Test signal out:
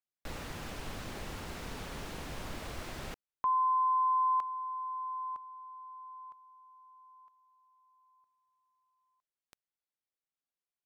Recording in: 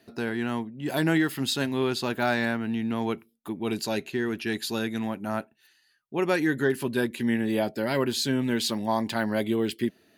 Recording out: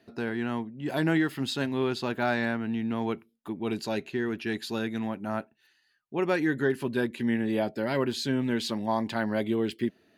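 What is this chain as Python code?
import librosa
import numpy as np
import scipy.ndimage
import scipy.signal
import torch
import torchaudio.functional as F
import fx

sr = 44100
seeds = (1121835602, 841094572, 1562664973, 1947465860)

y = fx.lowpass(x, sr, hz=3600.0, slope=6)
y = y * librosa.db_to_amplitude(-1.5)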